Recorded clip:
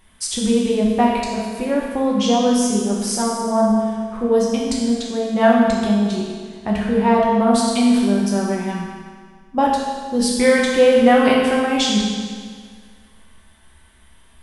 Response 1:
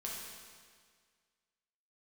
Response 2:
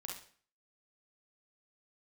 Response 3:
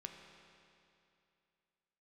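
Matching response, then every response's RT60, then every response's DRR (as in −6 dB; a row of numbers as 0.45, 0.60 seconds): 1; 1.8, 0.45, 2.7 seconds; −4.0, −1.5, 3.0 decibels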